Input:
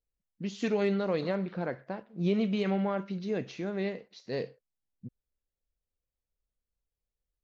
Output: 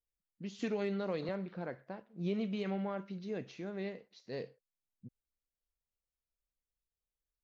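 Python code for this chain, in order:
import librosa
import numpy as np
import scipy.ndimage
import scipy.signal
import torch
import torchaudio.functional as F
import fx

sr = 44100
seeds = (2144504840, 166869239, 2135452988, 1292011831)

y = fx.band_squash(x, sr, depth_pct=70, at=(0.59, 1.29))
y = y * 10.0 ** (-7.5 / 20.0)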